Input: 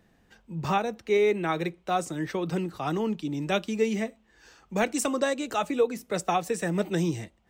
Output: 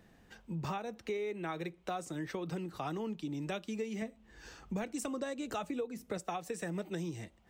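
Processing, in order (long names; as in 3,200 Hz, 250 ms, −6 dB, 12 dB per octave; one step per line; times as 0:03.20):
0:04.02–0:06.18: low-shelf EQ 250 Hz +8.5 dB
downward compressor 6 to 1, threshold −37 dBFS, peak gain reduction 19 dB
level +1 dB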